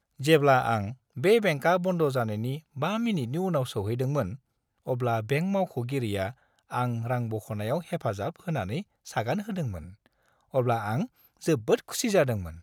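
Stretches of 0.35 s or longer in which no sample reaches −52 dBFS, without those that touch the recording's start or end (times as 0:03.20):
0:04.36–0:04.86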